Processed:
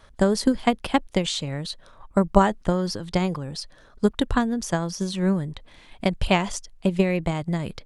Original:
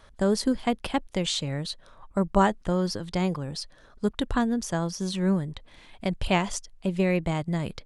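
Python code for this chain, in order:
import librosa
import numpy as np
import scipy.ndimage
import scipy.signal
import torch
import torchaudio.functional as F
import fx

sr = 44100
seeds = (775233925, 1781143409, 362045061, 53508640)

y = fx.transient(x, sr, attack_db=7, sustain_db=3)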